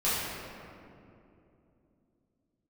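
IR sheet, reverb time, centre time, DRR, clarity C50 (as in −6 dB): 2.8 s, 149 ms, −11.0 dB, −2.5 dB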